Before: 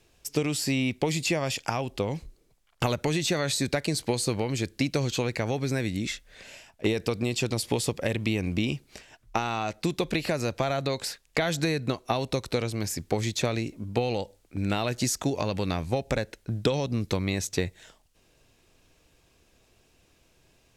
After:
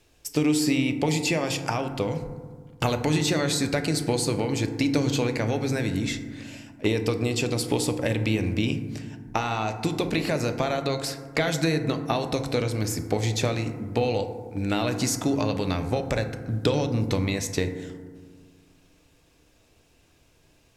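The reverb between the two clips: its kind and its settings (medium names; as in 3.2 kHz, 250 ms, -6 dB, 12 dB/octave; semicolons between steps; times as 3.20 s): FDN reverb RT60 1.6 s, low-frequency decay 1.5×, high-frequency decay 0.3×, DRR 6.5 dB; trim +1 dB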